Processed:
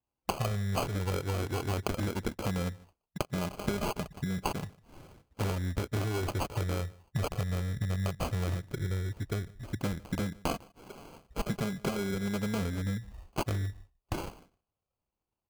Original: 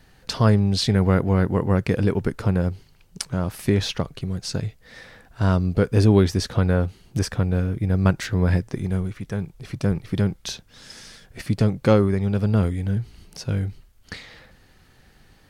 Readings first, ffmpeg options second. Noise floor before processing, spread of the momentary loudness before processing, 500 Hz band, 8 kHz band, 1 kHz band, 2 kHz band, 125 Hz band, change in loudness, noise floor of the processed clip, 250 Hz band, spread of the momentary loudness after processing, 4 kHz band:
-55 dBFS, 16 LU, -12.0 dB, -7.0 dB, -5.5 dB, -7.5 dB, -12.0 dB, -12.0 dB, under -85 dBFS, -12.5 dB, 8 LU, -10.0 dB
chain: -filter_complex "[0:a]asplit=2[s0][s1];[s1]aeval=exprs='0.168*(abs(mod(val(0)/0.168+3,4)-2)-1)':c=same,volume=0.596[s2];[s0][s2]amix=inputs=2:normalize=0,agate=range=0.0562:threshold=0.00708:ratio=16:detection=peak,lowpass=4600,lowshelf=f=84:g=9.5,flanger=delay=1.5:depth=3.4:regen=-20:speed=0.13:shape=sinusoidal,highpass=48,tiltshelf=f=1300:g=-10,bandreject=f=3300:w=6.3,afwtdn=0.0141,acompressor=threshold=0.0158:ratio=10,aecho=1:1:150:0.0708,acrusher=samples=24:mix=1:aa=0.000001,volume=2.24"

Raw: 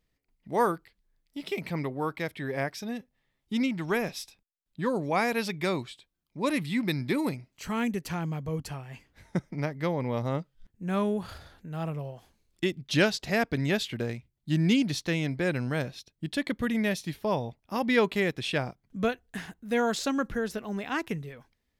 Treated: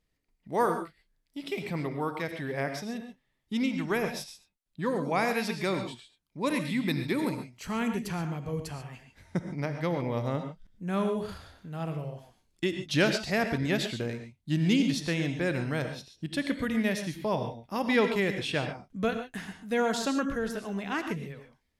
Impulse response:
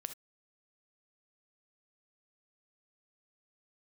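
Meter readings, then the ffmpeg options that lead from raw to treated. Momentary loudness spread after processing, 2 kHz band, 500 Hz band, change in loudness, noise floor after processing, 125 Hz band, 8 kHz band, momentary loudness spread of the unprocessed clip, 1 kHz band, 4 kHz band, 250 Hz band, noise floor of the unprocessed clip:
14 LU, -0.5 dB, -0.5 dB, -0.5 dB, -77 dBFS, -1.0 dB, -0.5 dB, 14 LU, -0.5 dB, -0.5 dB, -0.5 dB, -79 dBFS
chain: -filter_complex "[1:a]atrim=start_sample=2205,asetrate=23814,aresample=44100[s0];[0:a][s0]afir=irnorm=-1:irlink=0,volume=0.841"

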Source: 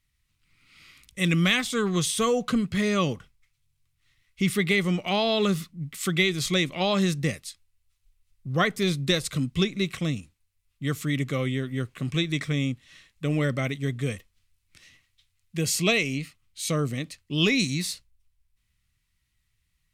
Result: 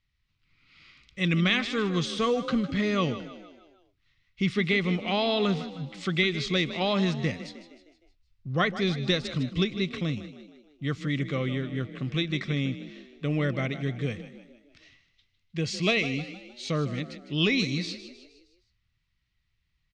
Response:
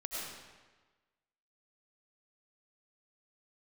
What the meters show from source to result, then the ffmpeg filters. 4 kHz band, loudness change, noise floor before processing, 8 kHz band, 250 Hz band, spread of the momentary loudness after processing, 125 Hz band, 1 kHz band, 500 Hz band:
-2.0 dB, -2.0 dB, -74 dBFS, -13.0 dB, -1.5 dB, 14 LU, -2.0 dB, -1.5 dB, -1.5 dB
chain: -filter_complex "[0:a]lowpass=f=5200:w=0.5412,lowpass=f=5200:w=1.3066,asplit=6[s0][s1][s2][s3][s4][s5];[s1]adelay=155,afreqshift=36,volume=0.224[s6];[s2]adelay=310,afreqshift=72,volume=0.107[s7];[s3]adelay=465,afreqshift=108,volume=0.0513[s8];[s4]adelay=620,afreqshift=144,volume=0.0248[s9];[s5]adelay=775,afreqshift=180,volume=0.0119[s10];[s0][s6][s7][s8][s9][s10]amix=inputs=6:normalize=0,volume=0.794"

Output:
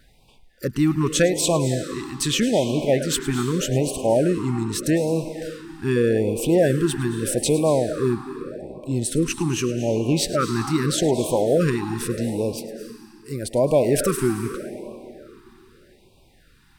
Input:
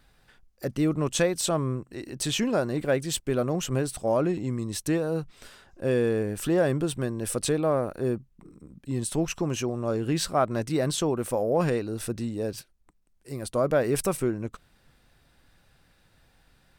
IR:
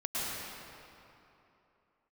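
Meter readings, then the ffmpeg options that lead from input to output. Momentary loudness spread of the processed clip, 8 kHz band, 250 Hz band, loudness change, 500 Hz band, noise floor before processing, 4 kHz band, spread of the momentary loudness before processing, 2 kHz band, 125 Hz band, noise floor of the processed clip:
14 LU, +6.0 dB, +6.0 dB, +5.5 dB, +5.5 dB, -64 dBFS, +6.0 dB, 9 LU, +4.5 dB, +5.5 dB, -55 dBFS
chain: -filter_complex "[0:a]asplit=2[s0][s1];[s1]highpass=270[s2];[1:a]atrim=start_sample=2205,adelay=106[s3];[s2][s3]afir=irnorm=-1:irlink=0,volume=0.211[s4];[s0][s4]amix=inputs=2:normalize=0,afftfilt=real='re*(1-between(b*sr/1024,540*pow(1600/540,0.5+0.5*sin(2*PI*0.82*pts/sr))/1.41,540*pow(1600/540,0.5+0.5*sin(2*PI*0.82*pts/sr))*1.41))':imag='im*(1-between(b*sr/1024,540*pow(1600/540,0.5+0.5*sin(2*PI*0.82*pts/sr))/1.41,540*pow(1600/540,0.5+0.5*sin(2*PI*0.82*pts/sr))*1.41))':win_size=1024:overlap=0.75,volume=1.88"

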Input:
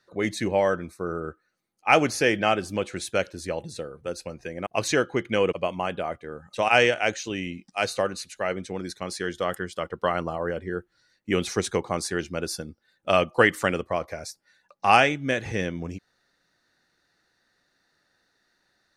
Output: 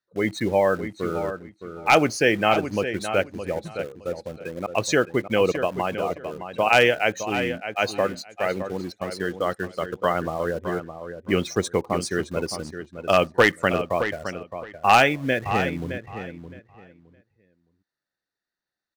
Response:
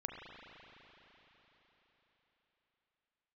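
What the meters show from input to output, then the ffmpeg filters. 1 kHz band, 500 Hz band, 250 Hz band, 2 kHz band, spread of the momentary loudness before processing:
+2.5 dB, +2.5 dB, +2.5 dB, +2.0 dB, 16 LU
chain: -filter_complex "[0:a]afftdn=nr=20:nf=-34,asplit=2[s0][s1];[s1]acrusher=bits=5:mix=0:aa=0.000001,volume=0.316[s2];[s0][s2]amix=inputs=2:normalize=0,aeval=exprs='0.501*(abs(mod(val(0)/0.501+3,4)-2)-1)':c=same,asplit=2[s3][s4];[s4]adelay=615,lowpass=f=4100:p=1,volume=0.335,asplit=2[s5][s6];[s6]adelay=615,lowpass=f=4100:p=1,volume=0.2,asplit=2[s7][s8];[s8]adelay=615,lowpass=f=4100:p=1,volume=0.2[s9];[s3][s5][s7][s9]amix=inputs=4:normalize=0"

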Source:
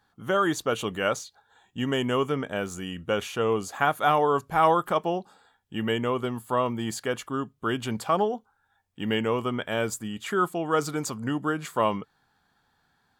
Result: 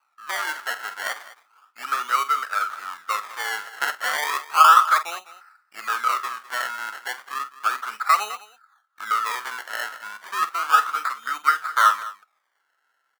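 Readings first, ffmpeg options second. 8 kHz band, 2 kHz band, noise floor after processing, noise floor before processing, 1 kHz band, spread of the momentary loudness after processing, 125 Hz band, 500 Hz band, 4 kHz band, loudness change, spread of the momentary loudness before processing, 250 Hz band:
+4.0 dB, +7.5 dB, -72 dBFS, -70 dBFS, +7.0 dB, 14 LU, under -35 dB, -15.0 dB, +3.5 dB, +4.5 dB, 10 LU, under -25 dB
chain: -af "acrusher=samples=25:mix=1:aa=0.000001:lfo=1:lforange=25:lforate=0.33,highpass=f=1300:t=q:w=11,aecho=1:1:47|206:0.224|0.141,volume=0.891"

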